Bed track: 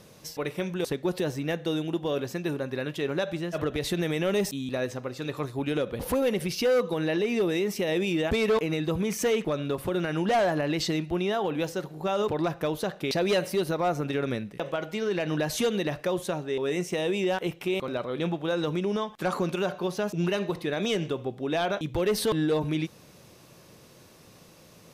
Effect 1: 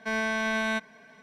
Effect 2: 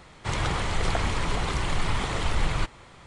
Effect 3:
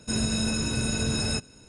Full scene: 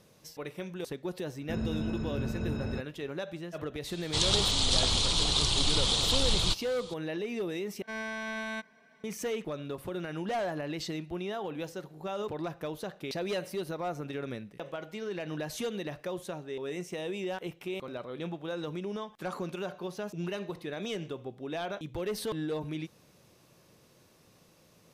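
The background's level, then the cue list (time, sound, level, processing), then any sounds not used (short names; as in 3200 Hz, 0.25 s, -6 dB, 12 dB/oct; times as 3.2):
bed track -8.5 dB
1.41 add 3 -4.5 dB + tape spacing loss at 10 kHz 39 dB
3.88 add 2 -5 dB + resonant high shelf 2700 Hz +11.5 dB, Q 3
7.82 replace with 1 -8.5 dB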